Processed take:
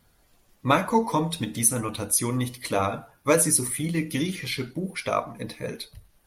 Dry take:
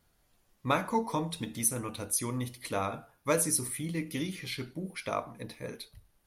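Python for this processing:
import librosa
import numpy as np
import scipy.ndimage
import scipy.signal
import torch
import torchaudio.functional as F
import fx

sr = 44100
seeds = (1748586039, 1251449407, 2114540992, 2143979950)

y = fx.spec_quant(x, sr, step_db=15)
y = y * 10.0 ** (8.0 / 20.0)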